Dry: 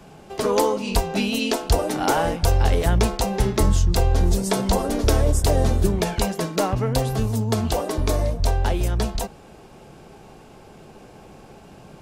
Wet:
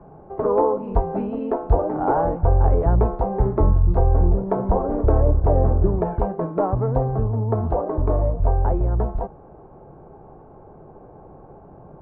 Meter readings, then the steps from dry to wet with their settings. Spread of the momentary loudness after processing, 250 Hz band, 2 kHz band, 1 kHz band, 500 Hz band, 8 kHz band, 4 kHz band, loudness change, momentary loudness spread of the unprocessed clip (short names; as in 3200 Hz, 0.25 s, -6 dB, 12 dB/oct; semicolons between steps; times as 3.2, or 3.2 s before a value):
6 LU, -1.5 dB, -13.0 dB, +1.0 dB, +1.5 dB, under -40 dB, under -35 dB, +0.5 dB, 4 LU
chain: LPF 1100 Hz 24 dB/oct; bell 220 Hz -6.5 dB 0.49 oct; gain +2 dB